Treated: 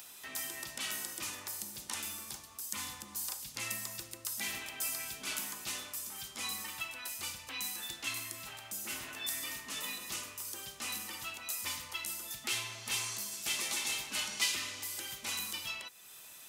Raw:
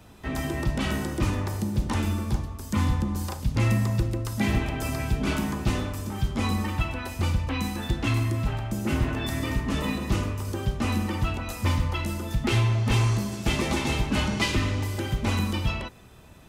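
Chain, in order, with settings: differentiator; upward compressor, threshold -46 dBFS; gain +3 dB

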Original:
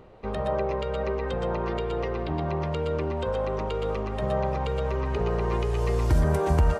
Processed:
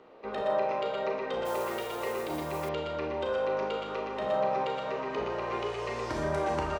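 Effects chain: three-band isolator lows -22 dB, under 240 Hz, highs -19 dB, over 6900 Hz; doubler 15 ms -11 dB; Schroeder reverb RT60 0.59 s, combs from 26 ms, DRR 1 dB; 1.45–2.69 modulation noise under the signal 17 dB; de-hum 66.5 Hz, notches 12; gain -2.5 dB

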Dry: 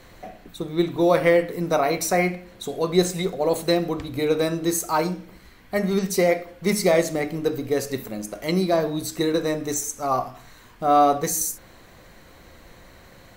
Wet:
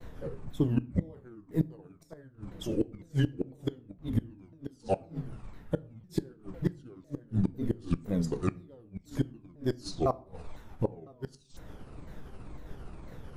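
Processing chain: repeated pitch sweeps -11 st, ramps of 0.503 s; expander -48 dBFS; low shelf 180 Hz +8.5 dB; wow and flutter 21 cents; flipped gate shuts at -15 dBFS, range -33 dB; tilt shelf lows +5 dB, about 1400 Hz; on a send: reverb RT60 0.45 s, pre-delay 6 ms, DRR 17 dB; on the sum: gain -4.5 dB

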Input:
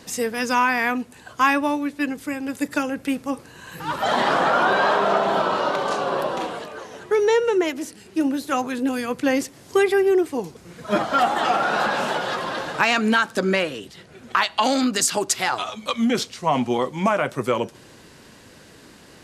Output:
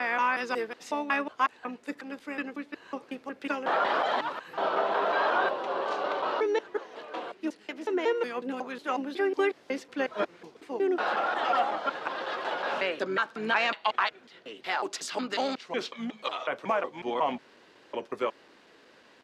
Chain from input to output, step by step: slices in reverse order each 0.183 s, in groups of 5; harmoniser -5 st -12 dB; three-band isolator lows -20 dB, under 280 Hz, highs -18 dB, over 4700 Hz; gain -7 dB

